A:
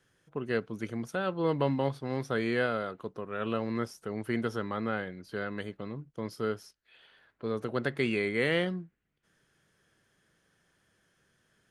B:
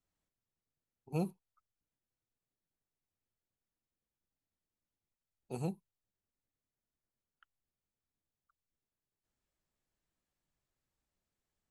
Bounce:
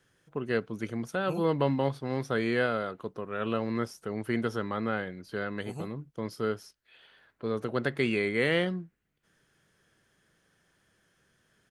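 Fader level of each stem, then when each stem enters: +1.5, -1.5 dB; 0.00, 0.15 s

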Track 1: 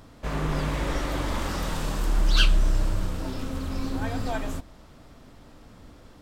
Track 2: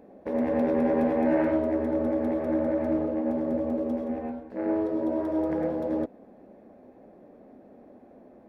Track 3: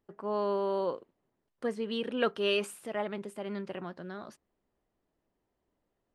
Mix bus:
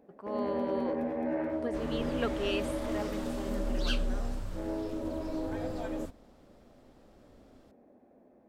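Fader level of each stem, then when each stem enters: -12.0, -9.0, -5.0 dB; 1.50, 0.00, 0.00 s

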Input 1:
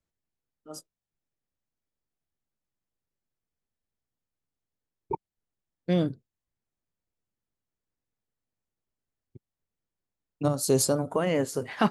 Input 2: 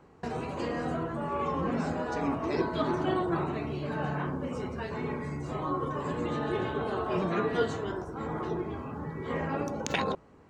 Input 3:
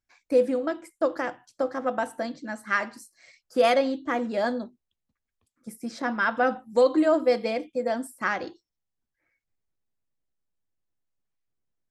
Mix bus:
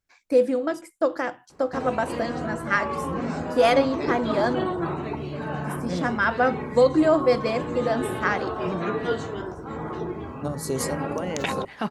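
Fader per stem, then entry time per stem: -5.0, +2.0, +2.0 dB; 0.00, 1.50, 0.00 s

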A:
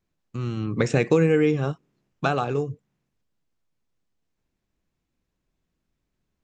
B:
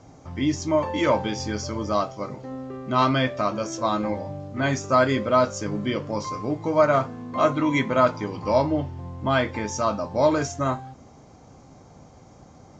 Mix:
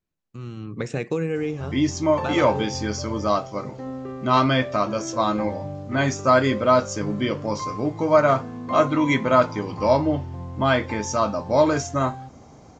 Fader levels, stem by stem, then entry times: -6.5, +2.0 dB; 0.00, 1.35 s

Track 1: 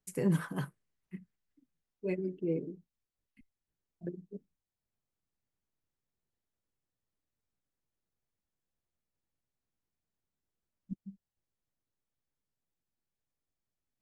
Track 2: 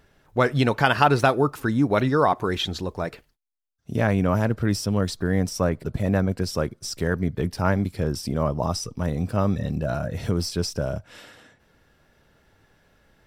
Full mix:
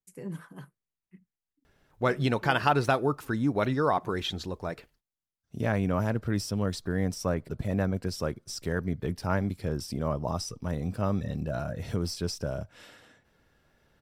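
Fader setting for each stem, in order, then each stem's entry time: -9.0, -6.0 dB; 0.00, 1.65 s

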